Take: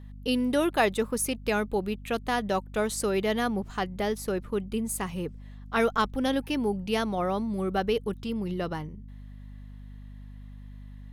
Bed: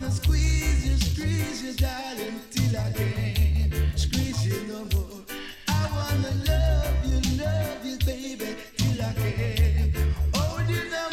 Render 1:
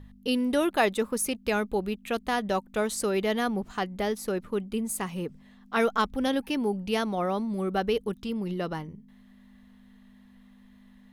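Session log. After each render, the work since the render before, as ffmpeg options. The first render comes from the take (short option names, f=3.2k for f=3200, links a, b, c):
-af "bandreject=f=50:t=h:w=4,bandreject=f=100:t=h:w=4,bandreject=f=150:t=h:w=4"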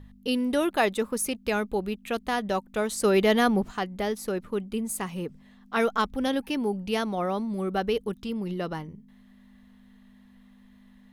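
-filter_complex "[0:a]asplit=3[a][b][c];[a]afade=t=out:st=3.03:d=0.02[d];[b]acontrast=48,afade=t=in:st=3.03:d=0.02,afade=t=out:st=3.69:d=0.02[e];[c]afade=t=in:st=3.69:d=0.02[f];[d][e][f]amix=inputs=3:normalize=0"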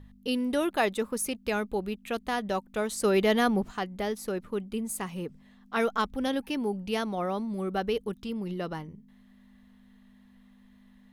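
-af "volume=-2.5dB"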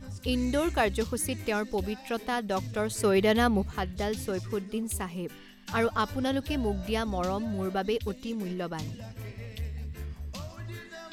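-filter_complex "[1:a]volume=-14.5dB[a];[0:a][a]amix=inputs=2:normalize=0"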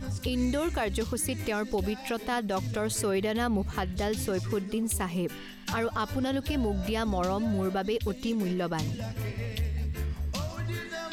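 -filter_complex "[0:a]asplit=2[a][b];[b]acompressor=threshold=-36dB:ratio=6,volume=2.5dB[c];[a][c]amix=inputs=2:normalize=0,alimiter=limit=-20dB:level=0:latency=1:release=85"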